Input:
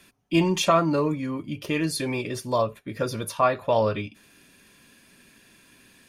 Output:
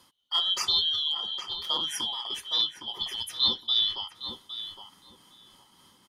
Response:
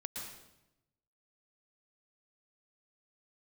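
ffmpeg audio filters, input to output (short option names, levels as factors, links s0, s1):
-filter_complex "[0:a]afftfilt=real='real(if(lt(b,272),68*(eq(floor(b/68),0)*1+eq(floor(b/68),1)*3+eq(floor(b/68),2)*0+eq(floor(b/68),3)*2)+mod(b,68),b),0)':imag='imag(if(lt(b,272),68*(eq(floor(b/68),0)*1+eq(floor(b/68),1)*3+eq(floor(b/68),2)*0+eq(floor(b/68),3)*2)+mod(b,68),b),0)':win_size=2048:overlap=0.75,tremolo=f=3.4:d=0.39,asplit=2[s0][s1];[s1]adelay=812,lowpass=f=1800:p=1,volume=0.501,asplit=2[s2][s3];[s3]adelay=812,lowpass=f=1800:p=1,volume=0.24,asplit=2[s4][s5];[s5]adelay=812,lowpass=f=1800:p=1,volume=0.24[s6];[s2][s4][s6]amix=inputs=3:normalize=0[s7];[s0][s7]amix=inputs=2:normalize=0,volume=0.708"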